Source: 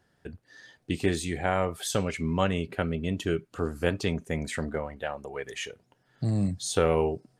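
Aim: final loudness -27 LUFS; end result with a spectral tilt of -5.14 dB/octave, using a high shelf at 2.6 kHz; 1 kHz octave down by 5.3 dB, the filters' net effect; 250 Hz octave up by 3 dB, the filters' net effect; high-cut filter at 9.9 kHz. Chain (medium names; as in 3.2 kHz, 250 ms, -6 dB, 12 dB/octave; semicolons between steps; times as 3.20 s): low-pass 9.9 kHz; peaking EQ 250 Hz +4.5 dB; peaking EQ 1 kHz -9 dB; treble shelf 2.6 kHz +4.5 dB; trim +1.5 dB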